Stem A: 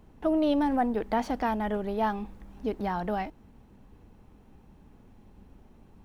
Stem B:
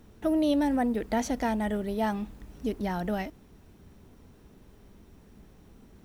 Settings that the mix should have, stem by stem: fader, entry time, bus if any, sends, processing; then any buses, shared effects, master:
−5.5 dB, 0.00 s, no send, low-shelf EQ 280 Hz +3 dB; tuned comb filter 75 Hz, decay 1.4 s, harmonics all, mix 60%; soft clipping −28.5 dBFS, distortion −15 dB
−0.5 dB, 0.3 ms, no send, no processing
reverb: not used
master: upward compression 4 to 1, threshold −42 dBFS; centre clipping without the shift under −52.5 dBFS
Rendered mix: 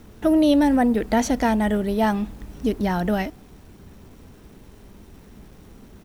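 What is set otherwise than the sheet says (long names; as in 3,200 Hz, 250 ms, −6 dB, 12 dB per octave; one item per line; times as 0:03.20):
stem B −0.5 dB → +8.0 dB
master: missing upward compression 4 to 1, threshold −42 dBFS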